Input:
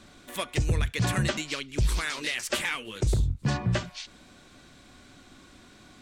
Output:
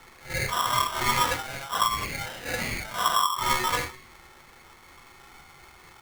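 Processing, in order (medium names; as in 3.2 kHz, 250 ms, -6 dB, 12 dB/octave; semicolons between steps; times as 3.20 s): phase randomisation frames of 200 ms; resonant low-pass 1 kHz, resonance Q 4.9; 1.87–2.59 s: compression 2:1, threshold -28 dBFS, peak gain reduction 4 dB; polarity switched at an audio rate 1.1 kHz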